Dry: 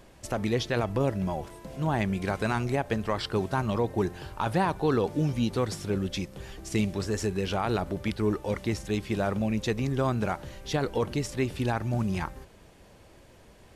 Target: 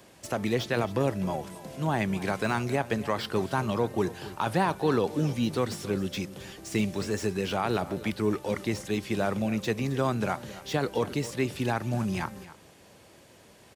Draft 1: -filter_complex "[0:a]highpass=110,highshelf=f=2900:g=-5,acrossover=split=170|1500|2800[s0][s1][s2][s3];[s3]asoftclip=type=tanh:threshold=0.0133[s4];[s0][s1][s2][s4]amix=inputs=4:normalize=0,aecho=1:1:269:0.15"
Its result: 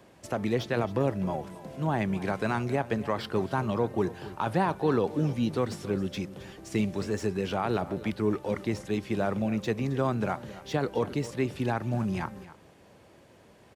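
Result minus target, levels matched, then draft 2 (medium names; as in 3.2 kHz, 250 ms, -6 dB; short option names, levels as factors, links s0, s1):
8 kHz band -6.0 dB
-filter_complex "[0:a]highpass=110,highshelf=f=2900:g=5.5,acrossover=split=170|1500|2800[s0][s1][s2][s3];[s3]asoftclip=type=tanh:threshold=0.0133[s4];[s0][s1][s2][s4]amix=inputs=4:normalize=0,aecho=1:1:269:0.15"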